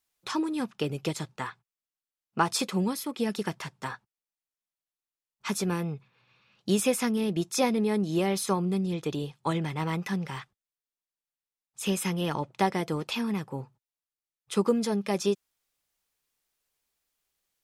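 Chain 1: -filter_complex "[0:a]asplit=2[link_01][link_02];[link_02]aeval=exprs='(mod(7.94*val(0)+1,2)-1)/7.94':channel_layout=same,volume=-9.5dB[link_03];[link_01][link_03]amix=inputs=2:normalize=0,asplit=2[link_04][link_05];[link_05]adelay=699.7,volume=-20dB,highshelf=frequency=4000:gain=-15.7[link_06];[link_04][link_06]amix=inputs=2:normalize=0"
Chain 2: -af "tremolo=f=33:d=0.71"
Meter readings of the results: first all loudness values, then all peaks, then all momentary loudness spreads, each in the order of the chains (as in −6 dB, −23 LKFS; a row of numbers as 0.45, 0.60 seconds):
−27.5, −33.0 LKFS; −9.0, −11.5 dBFS; 13, 12 LU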